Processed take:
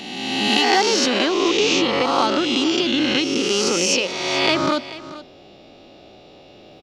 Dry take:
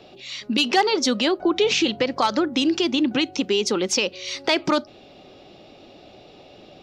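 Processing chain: spectral swells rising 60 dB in 1.67 s; on a send: echo 0.434 s -16 dB; on the sum: gain -2 dB

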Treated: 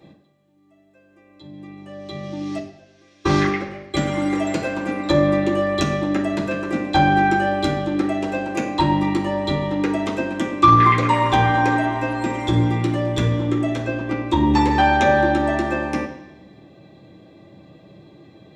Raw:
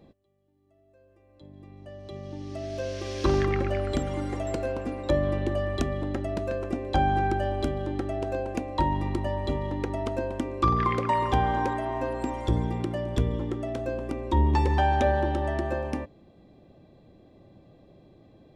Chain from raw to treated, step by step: 2.58–3.94 gate -23 dBFS, range -28 dB; 13.8–14.27 LPF 7300 Hz -> 3500 Hz 12 dB/oct; reverb RT60 1.0 s, pre-delay 3 ms, DRR -5 dB; gain +4.5 dB

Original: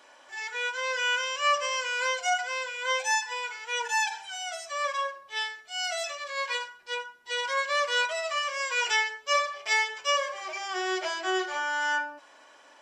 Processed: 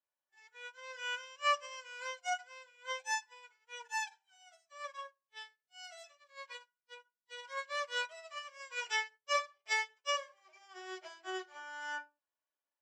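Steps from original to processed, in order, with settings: upward expander 2.5:1, over -47 dBFS; gain -5 dB

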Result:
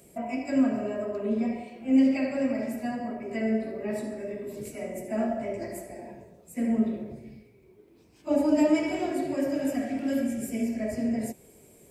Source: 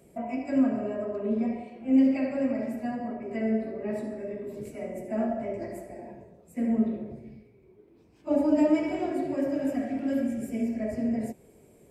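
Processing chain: high shelf 2700 Hz +10.5 dB

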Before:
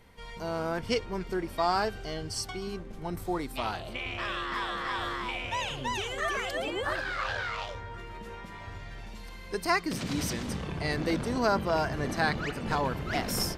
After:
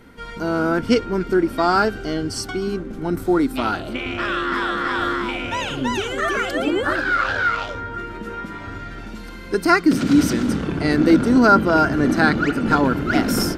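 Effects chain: small resonant body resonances 280/1400 Hz, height 14 dB, ringing for 25 ms; gain +6 dB

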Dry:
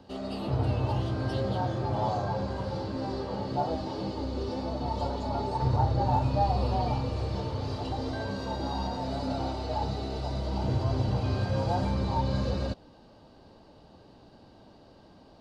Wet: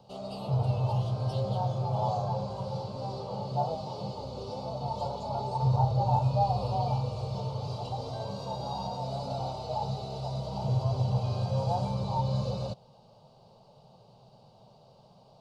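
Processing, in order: resonant low shelf 100 Hz -8 dB, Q 3; fixed phaser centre 720 Hz, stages 4

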